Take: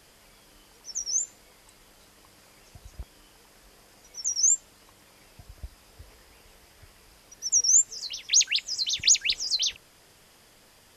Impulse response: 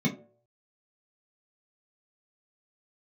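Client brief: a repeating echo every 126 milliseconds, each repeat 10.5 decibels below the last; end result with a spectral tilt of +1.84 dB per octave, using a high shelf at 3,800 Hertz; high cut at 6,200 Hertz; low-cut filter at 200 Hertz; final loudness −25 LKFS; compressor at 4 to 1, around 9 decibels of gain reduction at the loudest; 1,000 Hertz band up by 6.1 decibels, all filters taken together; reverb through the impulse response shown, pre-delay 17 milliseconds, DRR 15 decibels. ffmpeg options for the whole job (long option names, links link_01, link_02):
-filter_complex "[0:a]highpass=200,lowpass=6200,equalizer=frequency=1000:width_type=o:gain=8,highshelf=frequency=3800:gain=-5,acompressor=threshold=-31dB:ratio=4,aecho=1:1:126|252|378:0.299|0.0896|0.0269,asplit=2[link_01][link_02];[1:a]atrim=start_sample=2205,adelay=17[link_03];[link_02][link_03]afir=irnorm=-1:irlink=0,volume=-23.5dB[link_04];[link_01][link_04]amix=inputs=2:normalize=0,volume=8.5dB"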